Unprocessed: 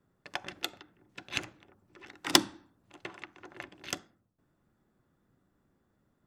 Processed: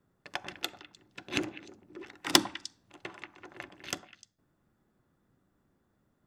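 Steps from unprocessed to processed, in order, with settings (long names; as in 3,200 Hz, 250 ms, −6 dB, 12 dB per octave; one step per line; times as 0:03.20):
0:01.27–0:02.04: parametric band 310 Hz +13.5 dB 1.5 octaves
on a send: echo through a band-pass that steps 101 ms, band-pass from 810 Hz, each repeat 1.4 octaves, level −10.5 dB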